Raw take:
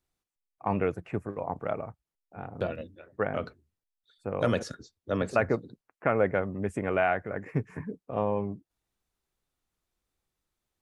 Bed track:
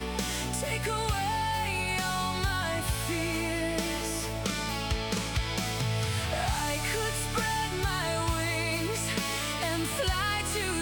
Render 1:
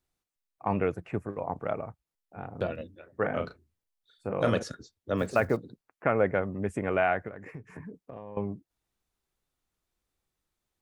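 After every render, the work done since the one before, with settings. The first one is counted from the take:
0:03.12–0:04.58: double-tracking delay 36 ms −6.5 dB
0:05.17–0:05.57: one scale factor per block 7 bits
0:07.28–0:08.37: downward compressor 8 to 1, threshold −38 dBFS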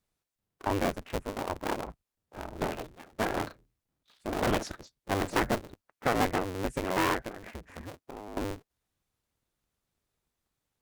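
sub-harmonics by changed cycles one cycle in 2, inverted
asymmetric clip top −27 dBFS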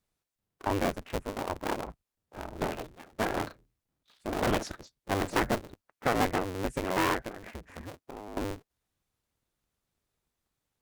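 no processing that can be heard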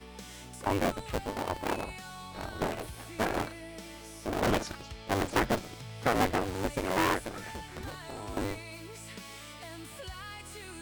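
mix in bed track −14.5 dB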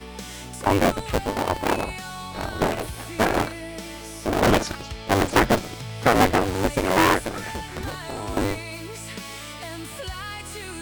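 level +9.5 dB

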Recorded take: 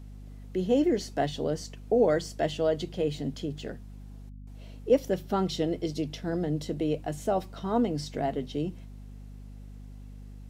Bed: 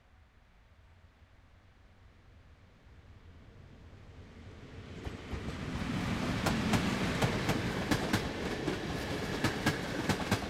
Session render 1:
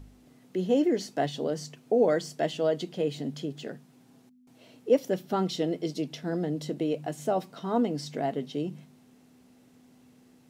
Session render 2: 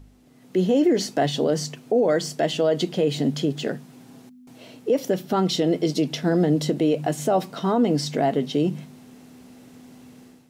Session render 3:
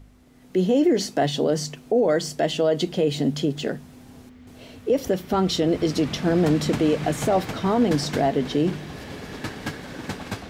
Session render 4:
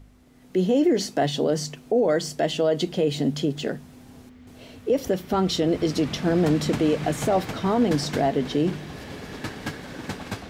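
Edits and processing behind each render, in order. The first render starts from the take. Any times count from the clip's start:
hum removal 50 Hz, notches 4
automatic gain control gain up to 11.5 dB; brickwall limiter −12 dBFS, peak gain reduction 9.5 dB
mix in bed −0.5 dB
level −1 dB

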